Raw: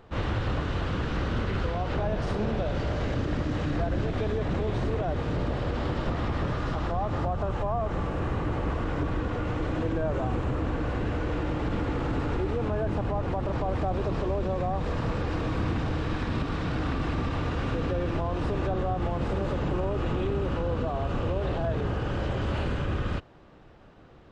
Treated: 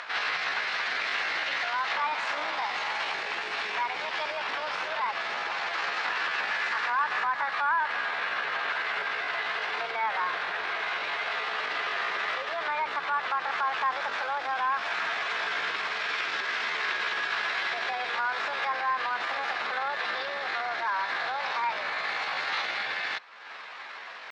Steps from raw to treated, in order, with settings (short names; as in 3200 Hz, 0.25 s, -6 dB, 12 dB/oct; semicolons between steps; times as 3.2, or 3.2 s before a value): upward compressor, threshold -30 dBFS; Butterworth band-pass 1600 Hz, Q 0.7; on a send: tape echo 67 ms, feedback 42%, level -24 dB, low-pass 1500 Hz; on the sum: pitch shift +6 st; gain +9 dB